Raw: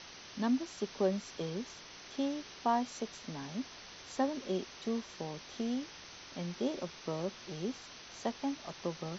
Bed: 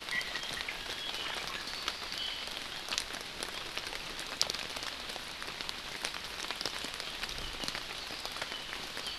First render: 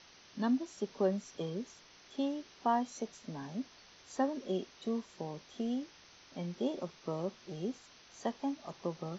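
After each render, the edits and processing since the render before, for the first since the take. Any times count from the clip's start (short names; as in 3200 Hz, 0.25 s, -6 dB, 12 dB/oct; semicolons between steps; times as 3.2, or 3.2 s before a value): noise print and reduce 8 dB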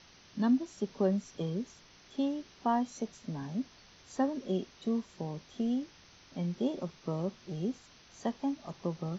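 tone controls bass +8 dB, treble 0 dB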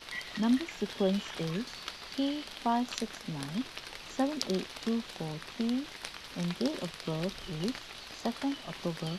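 add bed -5 dB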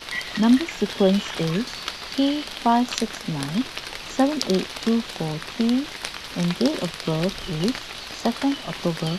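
gain +10.5 dB; limiter -2 dBFS, peak gain reduction 2.5 dB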